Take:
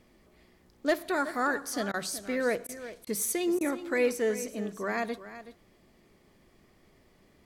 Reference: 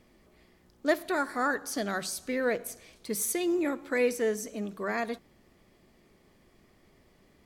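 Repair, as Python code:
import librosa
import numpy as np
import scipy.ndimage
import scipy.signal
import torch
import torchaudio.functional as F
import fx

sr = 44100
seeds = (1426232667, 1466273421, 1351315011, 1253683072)

y = fx.fix_declip(x, sr, threshold_db=-17.5)
y = fx.fix_interpolate(y, sr, at_s=(1.92, 2.67, 3.05, 3.59), length_ms=17.0)
y = fx.fix_echo_inverse(y, sr, delay_ms=374, level_db=-14.0)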